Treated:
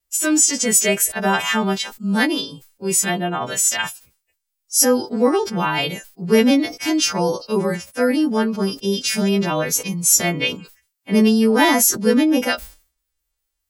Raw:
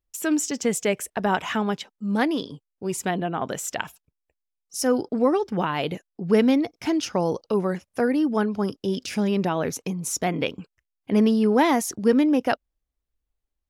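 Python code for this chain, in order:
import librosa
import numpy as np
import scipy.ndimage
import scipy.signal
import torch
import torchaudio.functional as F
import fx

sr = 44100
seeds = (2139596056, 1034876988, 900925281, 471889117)

y = fx.freq_snap(x, sr, grid_st=2)
y = fx.wow_flutter(y, sr, seeds[0], rate_hz=2.1, depth_cents=22.0)
y = fx.hpss(y, sr, part='harmonic', gain_db=9)
y = fx.sustainer(y, sr, db_per_s=140.0)
y = F.gain(torch.from_numpy(y), -4.0).numpy()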